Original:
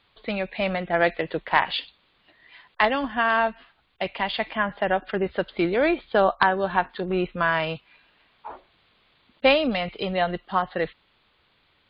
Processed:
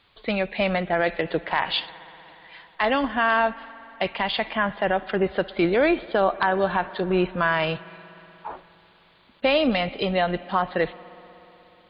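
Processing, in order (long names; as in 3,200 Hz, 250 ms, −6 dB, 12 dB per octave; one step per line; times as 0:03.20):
spring reverb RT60 3.8 s, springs 60 ms, chirp 55 ms, DRR 19.5 dB
brickwall limiter −13.5 dBFS, peak gain reduction 9 dB
level +3 dB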